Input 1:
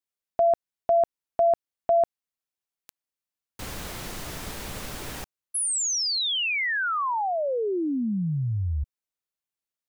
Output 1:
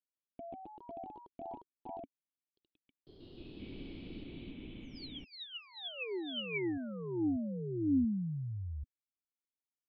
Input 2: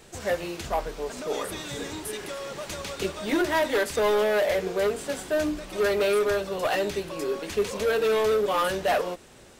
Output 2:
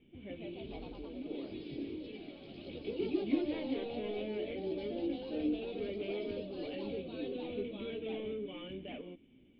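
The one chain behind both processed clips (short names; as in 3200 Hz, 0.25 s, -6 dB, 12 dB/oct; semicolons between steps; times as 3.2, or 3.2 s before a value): vocal tract filter i; echoes that change speed 0.176 s, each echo +2 st, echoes 3; gain -1 dB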